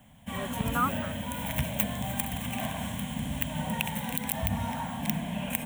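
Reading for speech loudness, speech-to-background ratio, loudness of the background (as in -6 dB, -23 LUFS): -33.5 LUFS, -1.5 dB, -32.0 LUFS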